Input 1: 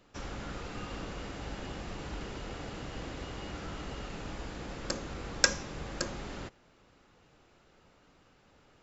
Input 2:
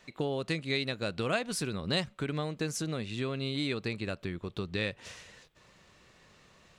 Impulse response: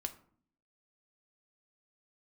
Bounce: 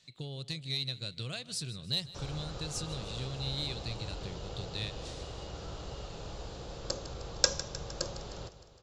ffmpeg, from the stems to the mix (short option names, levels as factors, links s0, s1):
-filter_complex "[0:a]adelay=2000,volume=0.794,asplit=2[s0][s1];[s1]volume=0.2[s2];[1:a]equalizer=f=125:t=o:w=1:g=10,equalizer=f=250:t=o:w=1:g=7,equalizer=f=500:t=o:w=1:g=-5,equalizer=f=1000:t=o:w=1:g=-4,equalizer=f=2000:t=o:w=1:g=10,equalizer=f=4000:t=o:w=1:g=9,equalizer=f=8000:t=o:w=1:g=11,asoftclip=type=tanh:threshold=0.355,volume=0.2,asplit=2[s3][s4];[s4]volume=0.119[s5];[s2][s5]amix=inputs=2:normalize=0,aecho=0:1:154|308|462|616|770|924|1078|1232|1386:1|0.59|0.348|0.205|0.121|0.0715|0.0422|0.0249|0.0147[s6];[s0][s3][s6]amix=inputs=3:normalize=0,equalizer=f=125:t=o:w=1:g=5,equalizer=f=250:t=o:w=1:g=-10,equalizer=f=500:t=o:w=1:g=5,equalizer=f=2000:t=o:w=1:g=-11,equalizer=f=4000:t=o:w=1:g=6"